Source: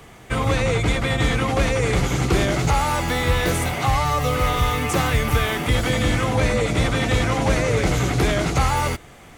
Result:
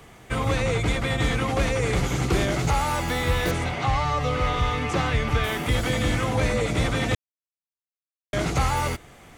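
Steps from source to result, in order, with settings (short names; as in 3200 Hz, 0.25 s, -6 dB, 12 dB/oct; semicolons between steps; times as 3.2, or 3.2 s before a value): 3.51–5.44 LPF 5300 Hz 12 dB/oct; 7.15–8.33 mute; gain -3.5 dB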